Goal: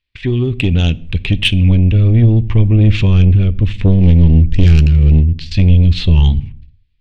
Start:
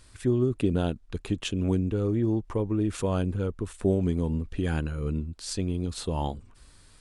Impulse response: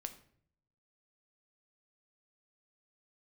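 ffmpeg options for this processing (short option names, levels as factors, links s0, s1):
-filter_complex "[0:a]lowpass=f=2700:w=0.5412,lowpass=f=2700:w=1.3066,agate=range=0.0158:threshold=0.00447:ratio=16:detection=peak,asubboost=boost=9:cutoff=200,asettb=1/sr,asplit=3[s0][s1][s2];[s0]atrim=end=3.924[s3];[s1]atrim=start=3.92:end=5.38,asetpts=PTS-STARTPTS,afade=t=in:d=0.004:c=qsin,afade=t=out:st=1.456:d=0.004:c=qsin,adynamicsmooth=sensitivity=7.5:basefreq=850[s4];[s2]atrim=start=5.376[s5];[s3][s4]acrossfade=d=0.004:c1=hsin:c2=qsin[s6];[s6][s5]acrossfade=d=0.004:c1=qsin:c2=hsin,aexciter=amount=12.7:drive=4.5:freq=2100,asoftclip=type=tanh:threshold=0.237,asplit=2[s7][s8];[1:a]atrim=start_sample=2205,afade=t=out:st=0.4:d=0.01,atrim=end_sample=18081,lowshelf=f=150:g=7.5[s9];[s8][s9]afir=irnorm=-1:irlink=0,volume=0.631[s10];[s7][s10]amix=inputs=2:normalize=0,volume=1.68"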